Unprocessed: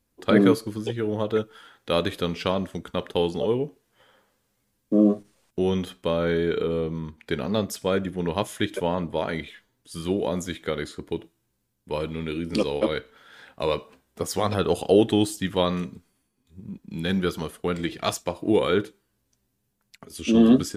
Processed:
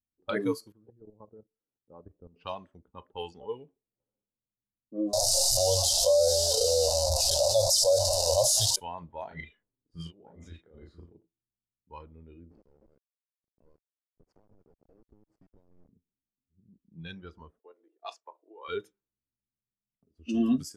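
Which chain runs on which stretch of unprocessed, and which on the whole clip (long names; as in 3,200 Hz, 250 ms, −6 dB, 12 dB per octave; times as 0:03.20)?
0:00.72–0:02.36: one scale factor per block 7 bits + low-pass filter 1,100 Hz + output level in coarse steps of 13 dB
0:05.13–0:08.76: linear delta modulator 64 kbit/s, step −25.5 dBFS + drawn EQ curve 120 Hz 0 dB, 180 Hz −23 dB, 340 Hz −24 dB, 570 Hz +13 dB, 900 Hz −5 dB, 2,300 Hz −20 dB, 4,900 Hz +14 dB, 11,000 Hz +5 dB + envelope flattener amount 70%
0:09.27–0:11.17: compressor whose output falls as the input rises −30 dBFS, ratio −0.5 + double-tracking delay 36 ms −3 dB + single-tap delay 990 ms −7 dB
0:12.51–0:15.89: downward compressor 16 to 1, threshold −34 dBFS + bit-depth reduction 6 bits, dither none
0:17.59–0:18.68: Butterworth high-pass 380 Hz + high-shelf EQ 7,200 Hz −6 dB + output level in coarse steps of 9 dB
whole clip: noise reduction from a noise print of the clip's start 15 dB; low-pass that shuts in the quiet parts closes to 310 Hz, open at −24.5 dBFS; level −7.5 dB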